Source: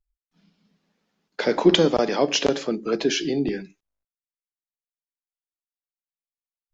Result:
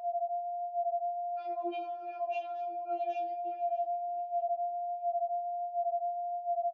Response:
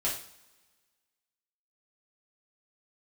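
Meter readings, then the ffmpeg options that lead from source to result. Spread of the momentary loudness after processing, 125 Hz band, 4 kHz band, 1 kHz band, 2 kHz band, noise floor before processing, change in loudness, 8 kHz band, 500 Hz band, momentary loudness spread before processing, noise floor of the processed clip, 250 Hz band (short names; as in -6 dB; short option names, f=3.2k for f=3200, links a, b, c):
3 LU, under -40 dB, under -30 dB, +3.0 dB, -21.5 dB, under -85 dBFS, -13.0 dB, n/a, -8.0 dB, 10 LU, -43 dBFS, -25.5 dB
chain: -filter_complex "[0:a]aeval=exprs='val(0)+0.0251*sin(2*PI*700*n/s)':c=same,asplit=3[a][b][c];[a]bandpass=f=730:t=q:w=8,volume=0dB[d];[b]bandpass=f=1.09k:t=q:w=8,volume=-6dB[e];[c]bandpass=f=2.44k:t=q:w=8,volume=-9dB[f];[d][e][f]amix=inputs=3:normalize=0,aemphasis=mode=reproduction:type=75fm,aecho=1:1:617|1234|1851:0.112|0.0393|0.0137,asplit=2[g][h];[1:a]atrim=start_sample=2205[i];[h][i]afir=irnorm=-1:irlink=0,volume=-20dB[j];[g][j]amix=inputs=2:normalize=0,flanger=delay=16.5:depth=4.7:speed=1.4,highpass=480,equalizer=f=990:t=o:w=0.91:g=-4,alimiter=level_in=7.5dB:limit=-24dB:level=0:latency=1:release=125,volume=-7.5dB,afftfilt=real='re*4*eq(mod(b,16),0)':imag='im*4*eq(mod(b,16),0)':win_size=2048:overlap=0.75"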